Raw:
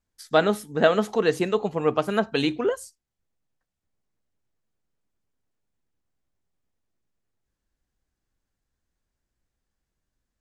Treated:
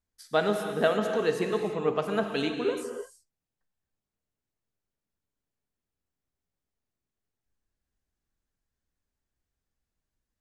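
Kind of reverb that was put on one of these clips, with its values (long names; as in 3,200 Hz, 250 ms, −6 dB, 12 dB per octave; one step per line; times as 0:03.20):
reverb whose tail is shaped and stops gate 360 ms flat, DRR 4.5 dB
level −6 dB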